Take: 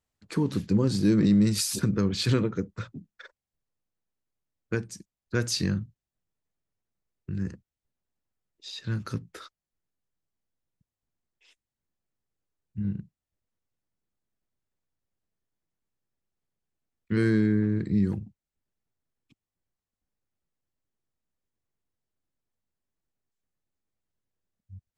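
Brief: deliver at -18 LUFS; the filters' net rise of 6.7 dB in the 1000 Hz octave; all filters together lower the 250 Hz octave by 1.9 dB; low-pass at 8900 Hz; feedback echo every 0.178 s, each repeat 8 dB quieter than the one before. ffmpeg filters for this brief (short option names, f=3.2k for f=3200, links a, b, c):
-af "lowpass=8.9k,equalizer=f=250:t=o:g=-3,equalizer=f=1k:t=o:g=9,aecho=1:1:178|356|534|712|890:0.398|0.159|0.0637|0.0255|0.0102,volume=9.5dB"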